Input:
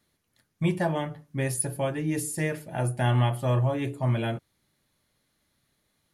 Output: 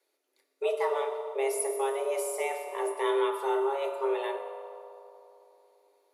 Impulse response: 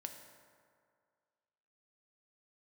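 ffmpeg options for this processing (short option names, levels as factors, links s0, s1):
-filter_complex "[0:a]afreqshift=270[s0];[1:a]atrim=start_sample=2205,asetrate=29547,aresample=44100[s1];[s0][s1]afir=irnorm=-1:irlink=0,volume=0.75"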